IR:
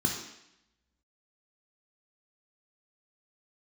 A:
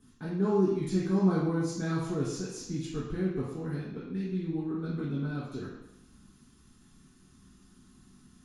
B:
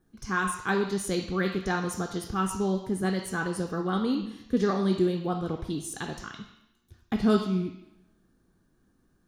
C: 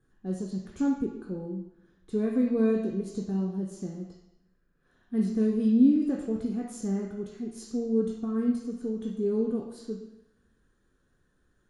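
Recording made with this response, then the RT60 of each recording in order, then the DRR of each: C; 0.85, 0.85, 0.85 seconds; −7.0, 5.0, −1.0 decibels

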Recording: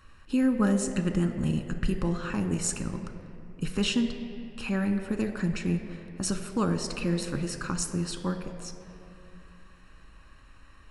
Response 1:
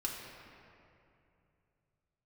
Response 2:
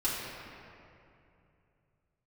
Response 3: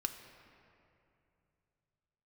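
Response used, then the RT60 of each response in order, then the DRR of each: 3; 2.7, 2.7, 2.7 seconds; −2.5, −10.0, 6.0 decibels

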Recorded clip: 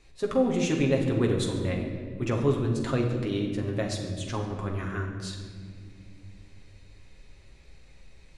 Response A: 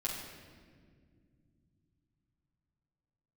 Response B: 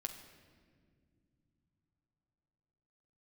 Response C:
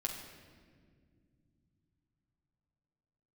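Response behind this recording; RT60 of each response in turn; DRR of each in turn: C; non-exponential decay, non-exponential decay, non-exponential decay; −6.5, 4.0, −0.5 decibels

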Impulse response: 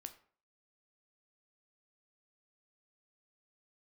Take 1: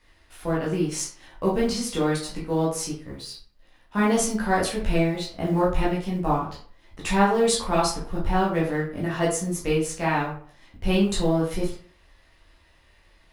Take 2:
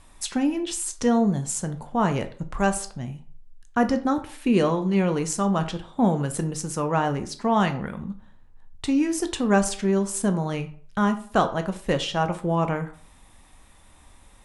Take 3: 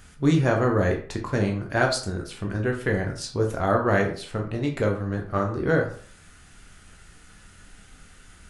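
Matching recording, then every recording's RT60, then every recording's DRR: 2; 0.50, 0.50, 0.50 seconds; −6.5, 8.0, 1.0 decibels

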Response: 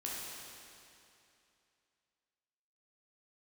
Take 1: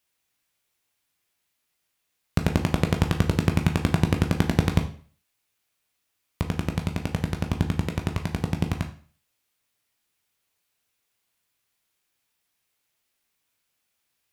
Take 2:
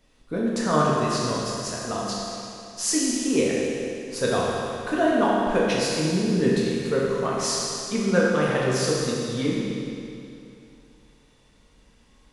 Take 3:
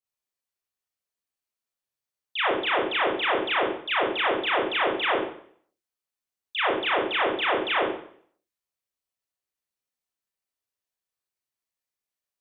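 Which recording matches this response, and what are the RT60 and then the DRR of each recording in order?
2; 0.45, 2.7, 0.60 seconds; 4.5, −5.5, −7.0 decibels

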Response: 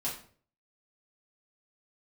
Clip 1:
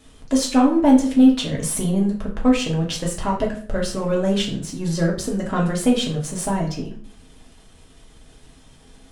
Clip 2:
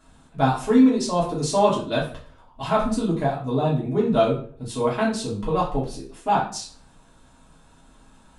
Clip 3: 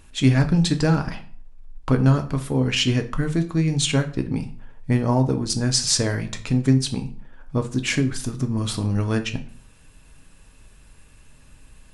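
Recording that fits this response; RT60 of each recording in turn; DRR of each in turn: 2; 0.50, 0.50, 0.50 seconds; −2.5, −7.0, 6.0 decibels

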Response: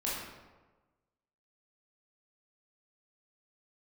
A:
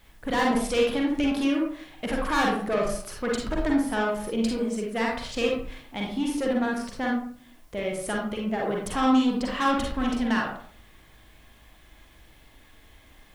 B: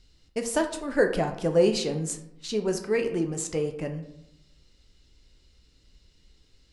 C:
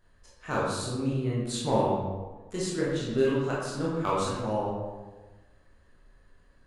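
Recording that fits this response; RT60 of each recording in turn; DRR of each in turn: C; 0.50, 0.85, 1.3 seconds; −2.0, 4.5, −7.0 decibels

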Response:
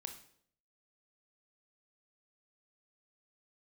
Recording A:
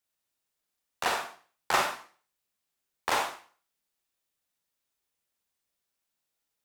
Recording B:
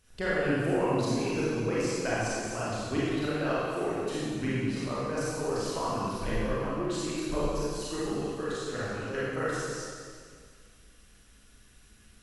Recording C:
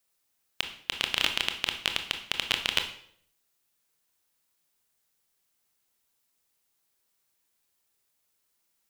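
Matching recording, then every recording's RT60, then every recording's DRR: C; 0.45, 1.9, 0.65 seconds; 2.5, −9.0, 5.5 decibels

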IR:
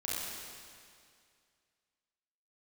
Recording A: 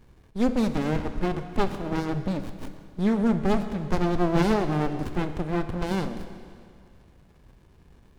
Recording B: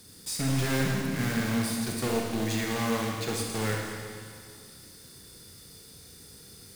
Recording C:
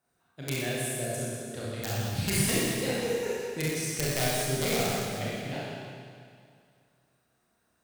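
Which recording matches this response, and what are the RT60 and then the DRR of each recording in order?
C; 2.2, 2.2, 2.2 seconds; 9.0, −0.5, −8.0 decibels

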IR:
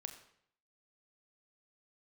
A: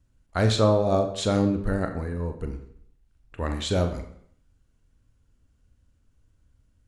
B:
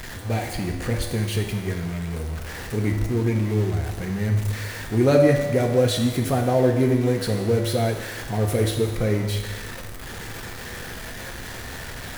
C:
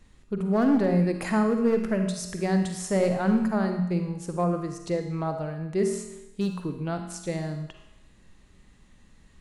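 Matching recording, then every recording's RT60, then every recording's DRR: A; 0.65, 1.3, 0.95 seconds; 5.5, 2.0, 5.0 decibels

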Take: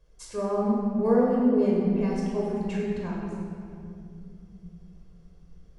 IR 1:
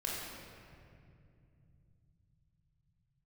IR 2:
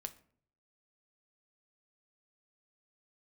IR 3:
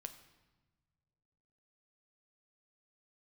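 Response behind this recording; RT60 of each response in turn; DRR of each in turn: 1; 2.4 s, 0.55 s, non-exponential decay; −4.5, 8.5, 7.5 decibels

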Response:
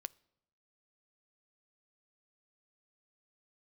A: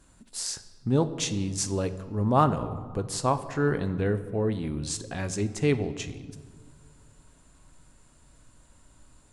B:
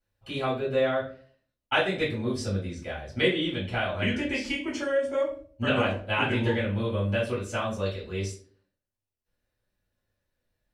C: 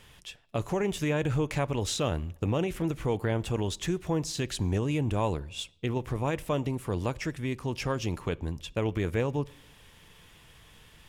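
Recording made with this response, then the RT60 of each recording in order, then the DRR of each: C; non-exponential decay, 0.45 s, 0.80 s; 11.0, −8.0, 17.5 decibels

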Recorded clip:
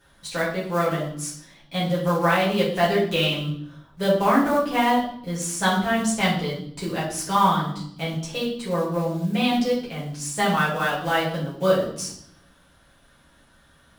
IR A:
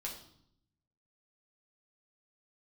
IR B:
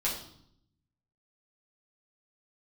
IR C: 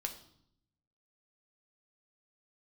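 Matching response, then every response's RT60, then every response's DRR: B; 0.70, 0.70, 0.70 seconds; −3.0, −7.0, 4.0 decibels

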